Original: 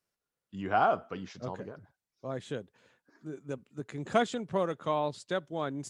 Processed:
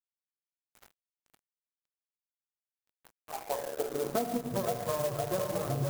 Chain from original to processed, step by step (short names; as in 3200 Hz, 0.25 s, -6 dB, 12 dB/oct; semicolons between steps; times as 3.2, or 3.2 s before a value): minimum comb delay 8.6 ms; ten-band EQ 125 Hz +6 dB, 250 Hz -3 dB, 500 Hz +4 dB, 2000 Hz -8 dB, 4000 Hz -11 dB, 8000 Hz -5 dB; split-band echo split 330 Hz, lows 0.106 s, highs 0.51 s, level -5 dB; reverb removal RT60 1.4 s; in parallel at +3 dB: vocal rider within 5 dB 0.5 s; on the sum: high shelf 3400 Hz -8.5 dB; notch 1400 Hz, Q 15; on a send at -3.5 dB: reverb RT60 1.1 s, pre-delay 10 ms; on the sum: high-pass sweep 3300 Hz -> 100 Hz, 2.58–4.75; crossover distortion -37.5 dBFS; compressor 6:1, threshold -28 dBFS, peak gain reduction 13.5 dB; clock jitter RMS 0.073 ms